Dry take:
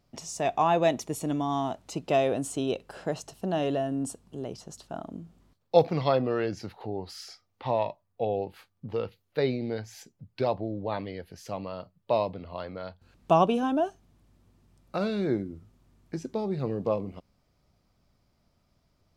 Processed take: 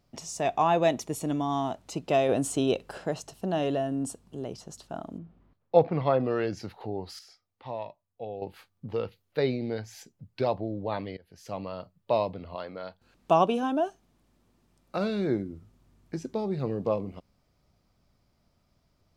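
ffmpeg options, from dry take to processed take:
-filter_complex "[0:a]asettb=1/sr,asplit=3[a][b][c];[a]atrim=end=5.184[d];[b]atrim=start=5.18:end=6.2,asetpts=PTS-STARTPTS,afade=t=in:d=0.004:c=qsin,afade=t=out:st=1.016:d=0.004:c=qsin,lowpass=2.2k[e];[c]atrim=start=6.196[f];[d][e]acrossfade=d=0.004:c1=hsin:c2=qsin[g];[g][f]acrossfade=d=0.004:c1=qsin:c2=hsin,asettb=1/sr,asplit=3[h][i][j];[h]atrim=end=12.554[k];[i]atrim=start=12.55:end=14.97,asetpts=PTS-STARTPTS,afade=t=in:d=0.004:c=qsin,afade=t=out:st=2.416:d=0.004:c=qsin,equalizer=f=76:w=0.78:g=-11[l];[j]atrim=start=14.966[m];[k][l]acrossfade=d=0.004:c1=hsin:c2=qsin[n];[n][m]acrossfade=d=0.004:c1=qsin:c2=hsin,asplit=6[o][p][q][r][s][t];[o]atrim=end=2.292[u];[p]atrim=start=2.288:end=2.982,asetpts=PTS-STARTPTS,volume=3.5dB[v];[q]atrim=start=2.978:end=7.192[w];[r]atrim=start=7.188:end=8.422,asetpts=PTS-STARTPTS,volume=-9dB[x];[s]atrim=start=8.418:end=11.17,asetpts=PTS-STARTPTS,afade=t=out:st=2.748:d=0.004:c=hsin:silence=0.0749894[y];[t]atrim=start=11.17,asetpts=PTS-STARTPTS,afade=t=in:d=0.41:silence=0.0749894[z];[u][v]acrossfade=d=0.004:c1=hsin:c2=hsin[aa];[aa][w]acrossfade=d=0.004:c1=hsin:c2=hsin[ab];[ab][x]acrossfade=d=0.004:c1=hsin:c2=hsin[ac];[y][z]concat=n=2:v=0:a=1[ad];[ac][ad]acrossfade=d=0.004:c1=hsin:c2=hsin"

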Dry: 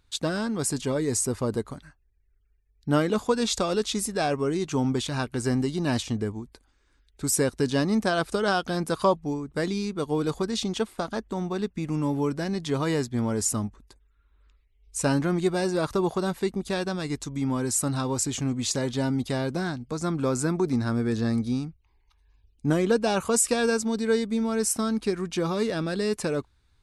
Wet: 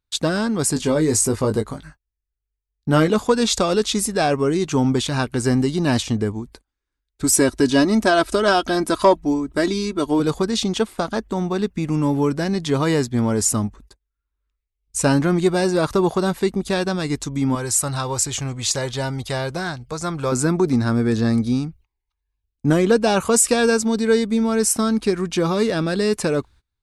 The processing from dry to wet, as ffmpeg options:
-filter_complex "[0:a]asettb=1/sr,asplit=3[a][b][c];[a]atrim=end=0.744[d];[b]atrim=start=0.74:end=3.08,asetpts=PTS-STARTPTS,afade=t=in:d=0.004:c=qsin,afade=t=out:st=2.336:d=0.004:c=qsin,asplit=2[e][f];[f]adelay=19,volume=-6.5dB[g];[e][g]amix=inputs=2:normalize=0,atrim=end_sample=103194[h];[c]atrim=start=3.076[i];[d][h]acrossfade=d=0.004:c1=hsin:c2=qsin[j];[j][i]acrossfade=d=0.004:c1=qsin:c2=hsin,asettb=1/sr,asplit=3[k][l][m];[k]atrim=end=7.244[n];[l]atrim=start=7.24:end=10.2,asetpts=PTS-STARTPTS,afade=t=in:d=0.004:c=qsin,afade=t=out:st=2.956:d=0.004:c=qsin,aecho=1:1:3.1:0.62,atrim=end_sample=130536[o];[m]atrim=start=10.196[p];[n][o]acrossfade=d=0.004:c1=hsin:c2=qsin[q];[q][p]acrossfade=d=0.004:c1=qsin:c2=hsin,asettb=1/sr,asplit=3[r][s][t];[r]atrim=end=17.554[u];[s]atrim=start=17.55:end=20.32,asetpts=PTS-STARTPTS,afade=t=in:d=0.004:c=qsin,afade=t=out:st=2.766:d=0.004:c=qsin,equalizer=f=250:t=o:w=1:g=-13.5[v];[t]atrim=start=20.316[w];[u][v]acrossfade=d=0.004:c1=hsin:c2=qsin[x];[x][w]acrossfade=d=0.004:c1=qsin:c2=hsin,agate=range=-24dB:threshold=-51dB:ratio=16:detection=peak,acontrast=81"

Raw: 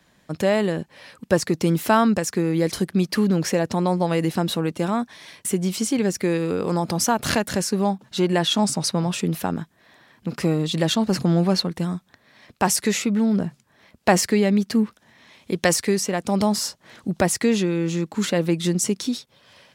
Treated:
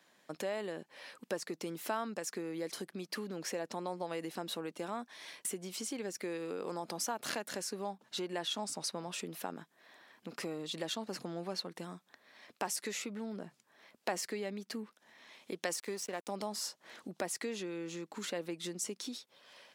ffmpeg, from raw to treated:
-filter_complex "[0:a]asettb=1/sr,asplit=3[a][b][c];[a]atrim=end=15.764[d];[b]atrim=start=15.76:end=16.29,asetpts=PTS-STARTPTS,afade=t=in:d=0.004:c=qsin,afade=t=out:st=0.526:d=0.004:c=qsin,aeval=exprs='sgn(val(0))*max(abs(val(0))-0.015,0)':c=same[e];[c]atrim=start=16.286[f];[d][e]acrossfade=d=0.004:c1=hsin:c2=qsin[g];[g][f]acrossfade=d=0.004:c1=qsin:c2=hsin,acompressor=threshold=-31dB:ratio=2.5,highpass=330,volume=-6dB"

